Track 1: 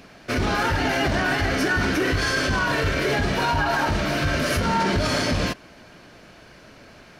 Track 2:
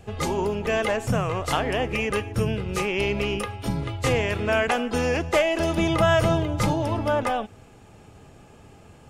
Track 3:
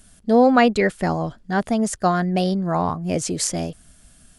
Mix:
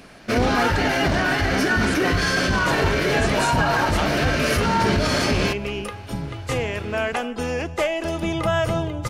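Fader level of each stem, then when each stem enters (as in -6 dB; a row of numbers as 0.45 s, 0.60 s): +1.5 dB, -2.0 dB, -9.5 dB; 0.00 s, 2.45 s, 0.00 s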